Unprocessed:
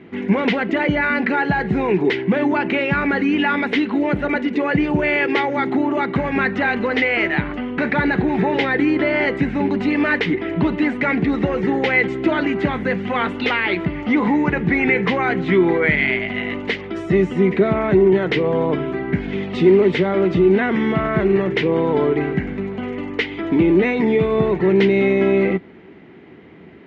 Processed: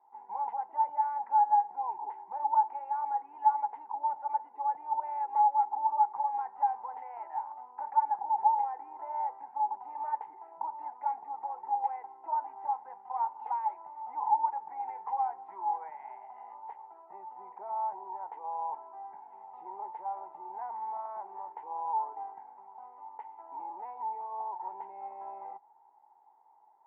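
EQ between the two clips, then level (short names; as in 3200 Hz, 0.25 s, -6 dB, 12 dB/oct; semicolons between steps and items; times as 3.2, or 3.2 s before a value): Butterworth band-pass 870 Hz, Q 6.7; air absorption 96 m; +1.5 dB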